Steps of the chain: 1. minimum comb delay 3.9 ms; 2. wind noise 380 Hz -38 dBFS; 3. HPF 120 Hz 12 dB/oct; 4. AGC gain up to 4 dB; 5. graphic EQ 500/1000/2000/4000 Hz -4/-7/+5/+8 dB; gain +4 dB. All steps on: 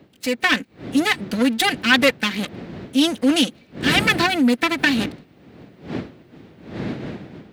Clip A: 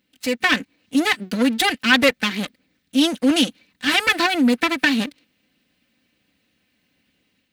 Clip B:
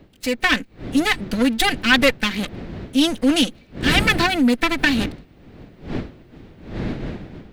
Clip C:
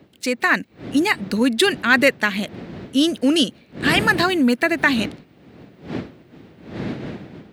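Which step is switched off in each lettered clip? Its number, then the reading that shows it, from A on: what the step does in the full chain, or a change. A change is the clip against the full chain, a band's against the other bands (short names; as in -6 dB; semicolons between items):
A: 2, momentary loudness spread change -7 LU; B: 3, 125 Hz band +2.5 dB; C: 1, 4 kHz band -2.5 dB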